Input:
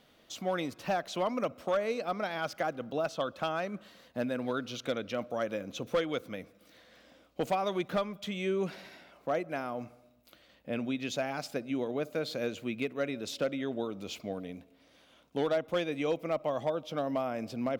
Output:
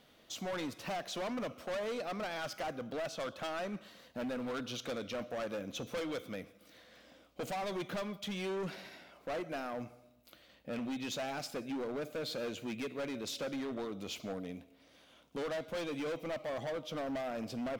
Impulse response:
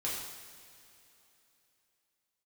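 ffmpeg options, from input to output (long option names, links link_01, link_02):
-filter_complex "[0:a]asplit=2[link_01][link_02];[link_02]tiltshelf=frequency=1500:gain=-8.5[link_03];[1:a]atrim=start_sample=2205,afade=type=out:start_time=0.24:duration=0.01,atrim=end_sample=11025[link_04];[link_03][link_04]afir=irnorm=-1:irlink=0,volume=-21.5dB[link_05];[link_01][link_05]amix=inputs=2:normalize=0,volume=34dB,asoftclip=hard,volume=-34dB,volume=-1dB"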